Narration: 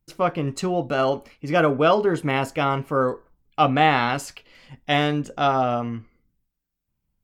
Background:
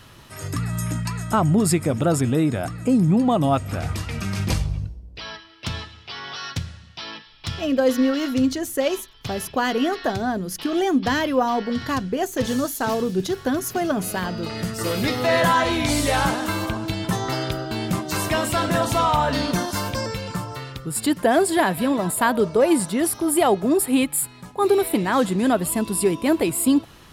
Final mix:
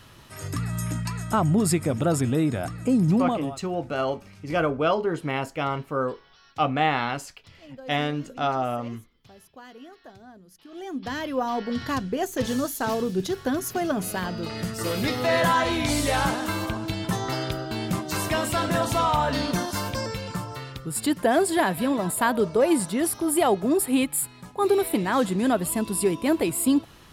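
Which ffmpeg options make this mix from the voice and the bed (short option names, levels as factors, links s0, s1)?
-filter_complex "[0:a]adelay=3000,volume=0.562[s0];[1:a]volume=7.5,afade=t=out:st=3.18:d=0.38:silence=0.0944061,afade=t=in:st=10.66:d=1.14:silence=0.0944061[s1];[s0][s1]amix=inputs=2:normalize=0"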